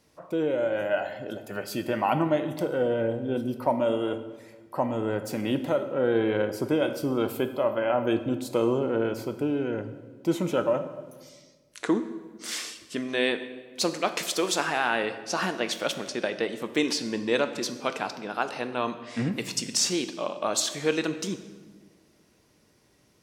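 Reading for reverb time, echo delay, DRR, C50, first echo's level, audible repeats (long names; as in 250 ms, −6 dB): 1.4 s, no echo audible, 9.0 dB, 11.5 dB, no echo audible, no echo audible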